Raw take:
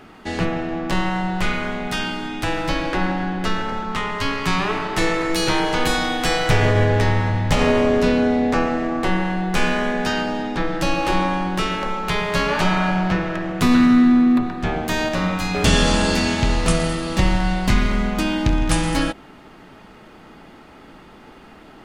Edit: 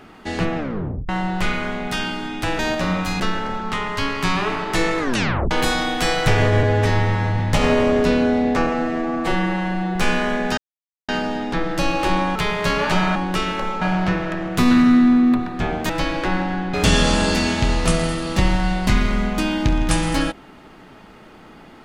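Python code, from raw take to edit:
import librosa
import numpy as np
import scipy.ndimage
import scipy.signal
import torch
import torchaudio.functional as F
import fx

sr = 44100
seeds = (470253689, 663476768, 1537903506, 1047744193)

y = fx.edit(x, sr, fx.tape_stop(start_s=0.57, length_s=0.52),
    fx.swap(start_s=2.59, length_s=0.84, other_s=14.93, other_length_s=0.61),
    fx.tape_stop(start_s=5.22, length_s=0.52),
    fx.stretch_span(start_s=6.86, length_s=0.51, factor=1.5),
    fx.stretch_span(start_s=8.64, length_s=0.86, factor=1.5),
    fx.insert_silence(at_s=10.12, length_s=0.51),
    fx.move(start_s=11.39, length_s=0.66, to_s=12.85), tone=tone)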